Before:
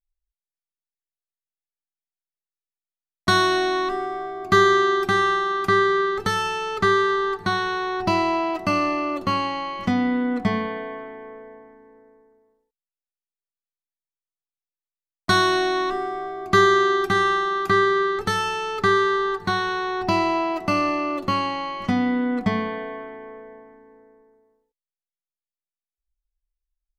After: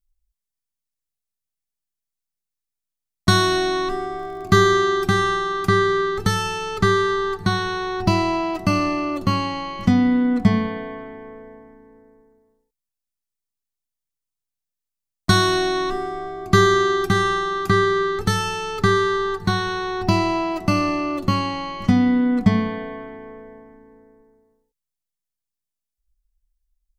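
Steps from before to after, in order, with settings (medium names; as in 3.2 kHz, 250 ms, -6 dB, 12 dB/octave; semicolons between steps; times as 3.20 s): tone controls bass +12 dB, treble +7 dB; 4.15–4.56 s: crackle 58 per s -> 12 per s -34 dBFS; trim -1 dB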